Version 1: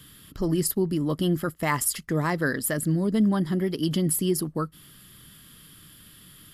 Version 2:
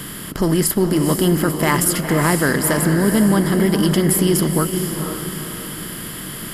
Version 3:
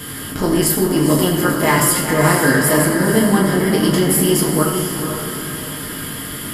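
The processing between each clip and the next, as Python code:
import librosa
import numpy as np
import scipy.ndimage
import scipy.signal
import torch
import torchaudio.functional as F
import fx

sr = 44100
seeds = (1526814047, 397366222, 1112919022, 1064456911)

y1 = fx.bin_compress(x, sr, power=0.6)
y1 = fx.echo_diffused(y1, sr, ms=479, feedback_pct=42, wet_db=-6)
y1 = y1 * librosa.db_to_amplitude(5.0)
y2 = fx.rev_fdn(y1, sr, rt60_s=0.99, lf_ratio=0.8, hf_ratio=0.75, size_ms=66.0, drr_db=-4.0)
y2 = y2 * librosa.db_to_amplitude(-2.0)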